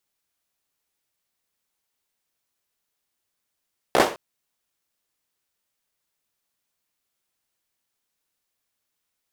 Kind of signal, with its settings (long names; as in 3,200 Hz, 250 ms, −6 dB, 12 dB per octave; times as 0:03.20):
synth clap length 0.21 s, apart 16 ms, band 530 Hz, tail 0.34 s